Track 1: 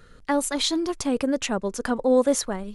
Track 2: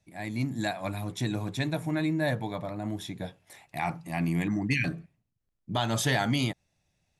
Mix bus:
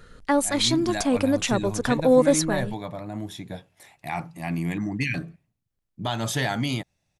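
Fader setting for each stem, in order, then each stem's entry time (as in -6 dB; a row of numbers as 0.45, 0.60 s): +2.0, +0.5 dB; 0.00, 0.30 s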